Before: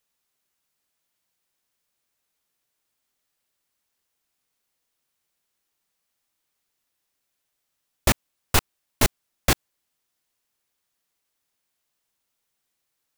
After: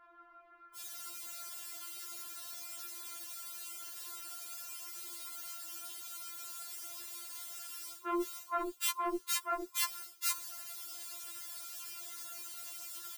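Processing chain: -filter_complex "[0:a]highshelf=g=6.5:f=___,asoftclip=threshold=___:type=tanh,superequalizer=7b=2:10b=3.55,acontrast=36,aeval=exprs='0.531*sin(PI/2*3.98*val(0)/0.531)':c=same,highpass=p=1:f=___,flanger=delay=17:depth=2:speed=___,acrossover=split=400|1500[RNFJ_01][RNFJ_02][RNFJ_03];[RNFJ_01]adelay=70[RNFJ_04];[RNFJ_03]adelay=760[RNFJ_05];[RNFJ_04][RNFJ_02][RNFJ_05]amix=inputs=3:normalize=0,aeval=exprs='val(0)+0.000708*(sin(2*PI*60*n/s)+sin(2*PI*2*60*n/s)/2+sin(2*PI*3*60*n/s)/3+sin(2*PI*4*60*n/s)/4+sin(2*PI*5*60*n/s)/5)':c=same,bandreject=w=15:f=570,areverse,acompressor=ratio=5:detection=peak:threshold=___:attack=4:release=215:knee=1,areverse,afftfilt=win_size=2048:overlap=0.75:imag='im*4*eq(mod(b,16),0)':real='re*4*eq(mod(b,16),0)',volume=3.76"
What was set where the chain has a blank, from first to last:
3.2k, 0.168, 54, 0.98, 0.00794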